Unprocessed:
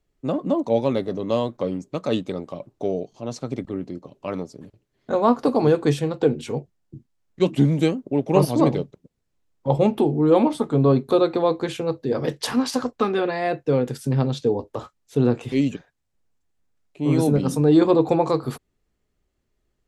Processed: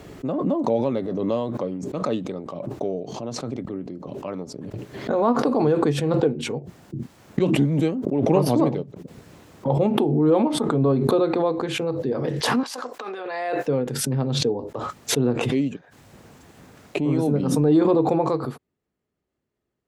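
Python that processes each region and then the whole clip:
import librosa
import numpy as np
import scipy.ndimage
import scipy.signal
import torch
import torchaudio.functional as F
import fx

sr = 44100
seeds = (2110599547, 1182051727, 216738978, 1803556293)

y = fx.chain(x, sr, fx.highpass(hz=580.0, slope=12),
    fx.high_shelf(hz=6000.0, db=5.5),
    fx.over_compress(threshold_db=-30.0, ratio=-0.5), at=(12.63, 13.68))
y = scipy.signal.sosfilt(scipy.signal.butter(2, 110.0, 'highpass', fs=sr, output='sos'), y)
y = fx.high_shelf(y, sr, hz=2600.0, db=-9.0)
y = fx.pre_swell(y, sr, db_per_s=27.0)
y = y * 10.0 ** (-2.5 / 20.0)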